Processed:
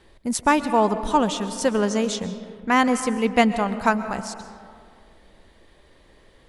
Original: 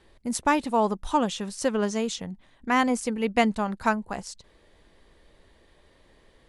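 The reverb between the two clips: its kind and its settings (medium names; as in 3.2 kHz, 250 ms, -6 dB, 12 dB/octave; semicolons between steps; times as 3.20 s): algorithmic reverb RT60 2.2 s, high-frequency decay 0.45×, pre-delay 90 ms, DRR 11.5 dB; trim +4 dB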